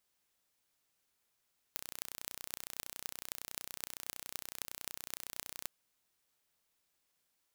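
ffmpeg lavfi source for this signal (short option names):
-f lavfi -i "aevalsrc='0.316*eq(mod(n,1432),0)*(0.5+0.5*eq(mod(n,11456),0))':d=3.9:s=44100"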